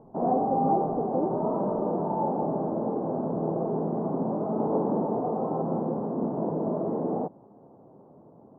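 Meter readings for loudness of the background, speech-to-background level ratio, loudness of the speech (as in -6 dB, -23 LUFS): -28.5 LUFS, -4.5 dB, -33.0 LUFS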